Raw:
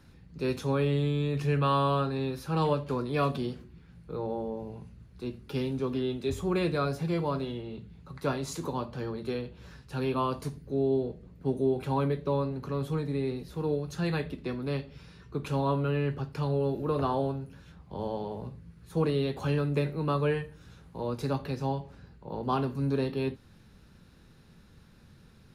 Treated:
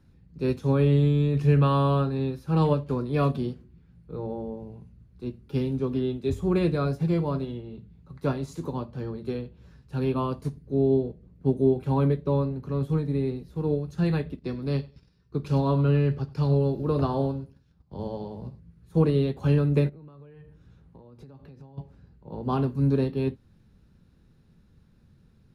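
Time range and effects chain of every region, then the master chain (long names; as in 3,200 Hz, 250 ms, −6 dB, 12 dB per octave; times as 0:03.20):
0:14.39–0:18.60: noise gate −49 dBFS, range −11 dB + parametric band 4,900 Hz +9 dB 0.56 octaves + repeating echo 99 ms, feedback 22%, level −16 dB
0:19.89–0:21.78: high-shelf EQ 5,500 Hz −8.5 dB + downward compressor 20 to 1, threshold −40 dBFS
whole clip: low-shelf EQ 460 Hz +10 dB; expander for the loud parts 1.5 to 1, over −38 dBFS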